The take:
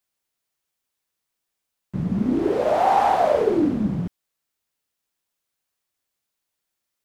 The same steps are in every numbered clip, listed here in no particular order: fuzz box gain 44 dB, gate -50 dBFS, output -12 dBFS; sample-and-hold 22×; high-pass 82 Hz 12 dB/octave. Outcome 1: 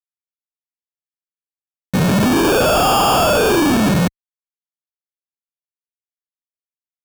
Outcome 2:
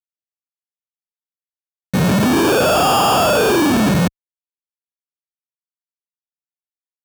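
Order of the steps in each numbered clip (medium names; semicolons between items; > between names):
fuzz box > high-pass > sample-and-hold; sample-and-hold > fuzz box > high-pass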